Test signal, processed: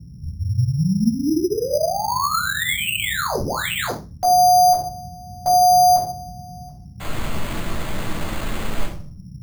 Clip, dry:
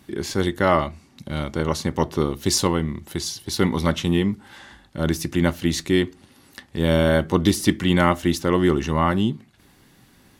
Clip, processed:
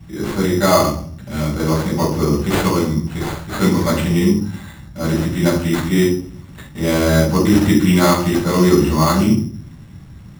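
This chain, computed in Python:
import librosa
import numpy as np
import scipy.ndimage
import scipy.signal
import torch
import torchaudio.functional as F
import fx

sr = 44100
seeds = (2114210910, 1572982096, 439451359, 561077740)

y = fx.room_shoebox(x, sr, seeds[0], volume_m3=520.0, walls='furnished', distance_m=7.1)
y = fx.dmg_noise_band(y, sr, seeds[1], low_hz=49.0, high_hz=180.0, level_db=-32.0)
y = np.repeat(y[::8], 8)[:len(y)]
y = y * librosa.db_to_amplitude(-6.0)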